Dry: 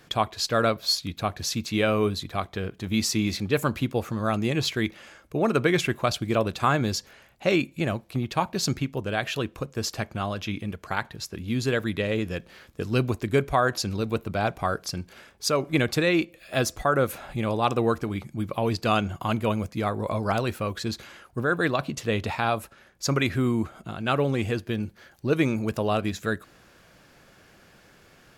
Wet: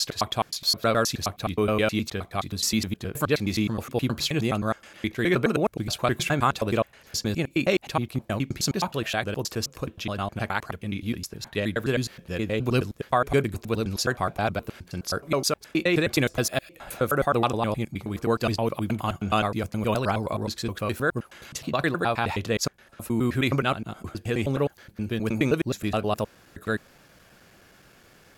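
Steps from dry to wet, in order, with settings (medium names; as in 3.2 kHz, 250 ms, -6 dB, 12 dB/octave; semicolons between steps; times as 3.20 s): slices played last to first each 105 ms, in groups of 5; treble shelf 9.6 kHz +6 dB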